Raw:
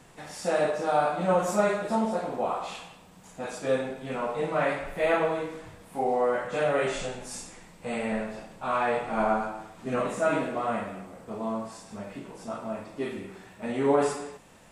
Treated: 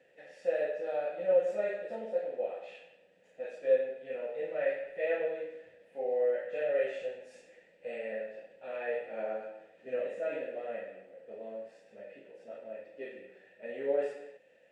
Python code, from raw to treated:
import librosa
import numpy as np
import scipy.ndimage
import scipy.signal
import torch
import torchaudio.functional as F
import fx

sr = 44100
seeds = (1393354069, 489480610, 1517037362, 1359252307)

y = fx.vowel_filter(x, sr, vowel='e')
y = F.gain(torch.from_numpy(y), 1.5).numpy()